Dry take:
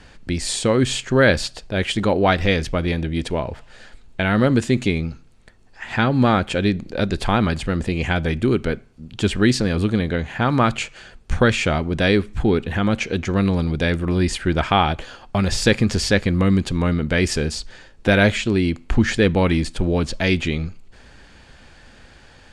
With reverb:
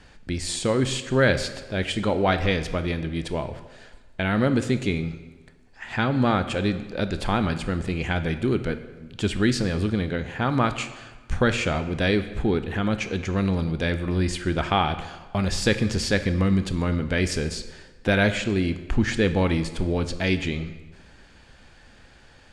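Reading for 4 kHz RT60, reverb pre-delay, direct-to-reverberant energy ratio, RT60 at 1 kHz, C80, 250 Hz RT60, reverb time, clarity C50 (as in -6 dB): 1.0 s, 17 ms, 10.0 dB, 1.3 s, 13.5 dB, 1.3 s, 1.3 s, 11.5 dB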